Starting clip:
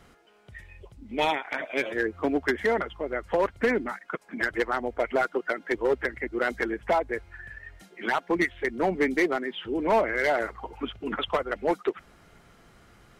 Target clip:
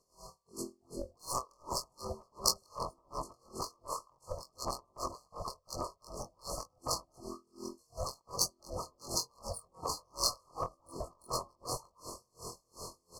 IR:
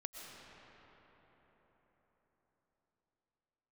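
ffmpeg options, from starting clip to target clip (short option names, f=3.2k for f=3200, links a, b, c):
-filter_complex "[0:a]afftfilt=real='re':imag='-im':win_size=2048:overlap=0.75,highshelf=f=3.2k:g=-5,afftfilt=real='re*lt(hypot(re,im),0.0708)':imag='im*lt(hypot(re,im),0.0708)':win_size=1024:overlap=0.75,adynamicsmooth=sensitivity=5:basefreq=5.2k,asplit=2[a][b];[b]adelay=75,lowpass=f=3k:p=1,volume=-19dB,asplit=2[c][d];[d]adelay=75,lowpass=f=3k:p=1,volume=0.54,asplit=2[e][f];[f]adelay=75,lowpass=f=3k:p=1,volume=0.54,asplit=2[g][h];[h]adelay=75,lowpass=f=3k:p=1,volume=0.54[i];[c][e][g][i]amix=inputs=4:normalize=0[j];[a][j]amix=inputs=2:normalize=0,aeval=exprs='val(0)*sin(2*PI*300*n/s)':c=same,aecho=1:1:1.9:0.46,afftfilt=real='re*(1-between(b*sr/4096,1300,4200))':imag='im*(1-between(b*sr/4096,1300,4200))':win_size=4096:overlap=0.75,aemphasis=mode=production:type=75kf,acompressor=threshold=-50dB:ratio=6,crystalizer=i=7.5:c=0,aeval=exprs='val(0)*pow(10,-36*(0.5-0.5*cos(2*PI*2.7*n/s))/20)':c=same,volume=16dB"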